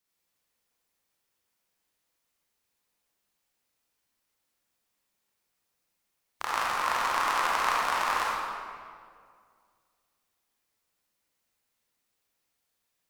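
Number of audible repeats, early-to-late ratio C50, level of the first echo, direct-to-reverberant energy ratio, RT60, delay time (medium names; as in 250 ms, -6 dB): no echo, -3.0 dB, no echo, -5.5 dB, 2.1 s, no echo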